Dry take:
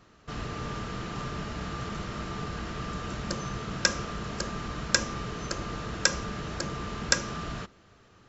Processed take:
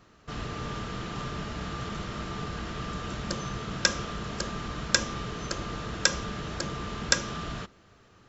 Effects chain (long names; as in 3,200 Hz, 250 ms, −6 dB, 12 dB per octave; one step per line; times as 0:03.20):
dynamic equaliser 3,400 Hz, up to +5 dB, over −52 dBFS, Q 3.6